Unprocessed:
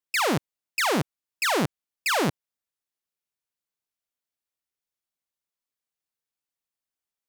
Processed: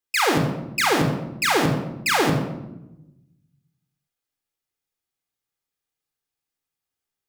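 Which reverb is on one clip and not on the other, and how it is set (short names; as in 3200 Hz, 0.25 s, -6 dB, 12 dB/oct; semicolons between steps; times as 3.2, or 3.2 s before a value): shoebox room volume 3500 m³, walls furnished, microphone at 3.9 m; gain +1 dB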